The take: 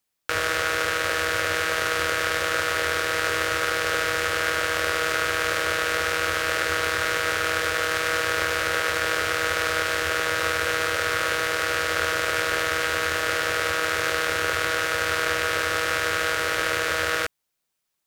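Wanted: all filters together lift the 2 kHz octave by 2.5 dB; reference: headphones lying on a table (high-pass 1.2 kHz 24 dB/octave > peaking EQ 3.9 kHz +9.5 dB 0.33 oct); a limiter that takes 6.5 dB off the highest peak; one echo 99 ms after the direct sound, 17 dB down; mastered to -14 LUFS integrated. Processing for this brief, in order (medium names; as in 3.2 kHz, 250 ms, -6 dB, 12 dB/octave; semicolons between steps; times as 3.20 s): peaking EQ 2 kHz +3.5 dB; peak limiter -11 dBFS; high-pass 1.2 kHz 24 dB/octave; peaking EQ 3.9 kHz +9.5 dB 0.33 oct; delay 99 ms -17 dB; trim +10.5 dB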